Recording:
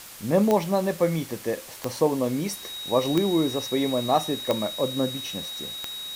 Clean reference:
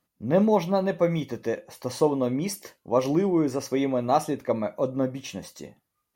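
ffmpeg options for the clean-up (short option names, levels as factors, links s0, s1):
-af "adeclick=t=4,bandreject=f=3800:w=30,afftdn=nr=28:nf=-40"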